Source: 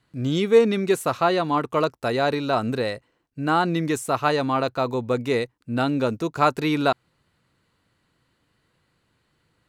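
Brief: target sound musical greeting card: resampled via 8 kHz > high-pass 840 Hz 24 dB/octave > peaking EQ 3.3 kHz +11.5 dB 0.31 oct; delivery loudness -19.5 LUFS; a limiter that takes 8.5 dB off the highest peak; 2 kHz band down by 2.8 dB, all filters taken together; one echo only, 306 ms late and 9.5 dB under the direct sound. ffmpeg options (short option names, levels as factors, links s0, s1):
-af "equalizer=f=2000:t=o:g=-5,alimiter=limit=0.188:level=0:latency=1,aecho=1:1:306:0.335,aresample=8000,aresample=44100,highpass=f=840:w=0.5412,highpass=f=840:w=1.3066,equalizer=f=3300:t=o:w=0.31:g=11.5,volume=4.22"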